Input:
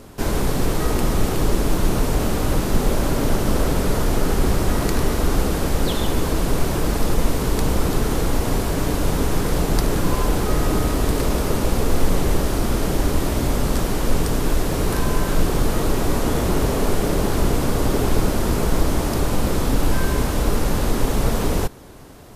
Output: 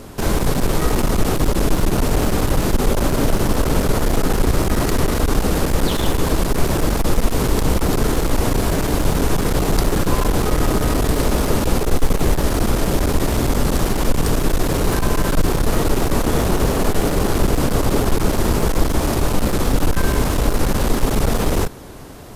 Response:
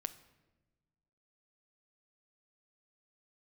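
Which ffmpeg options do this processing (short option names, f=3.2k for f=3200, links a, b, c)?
-filter_complex "[0:a]asplit=2[a][b];[b]alimiter=limit=-15dB:level=0:latency=1,volume=-1dB[c];[a][c]amix=inputs=2:normalize=0,aeval=exprs='clip(val(0),-1,0.158)':c=same"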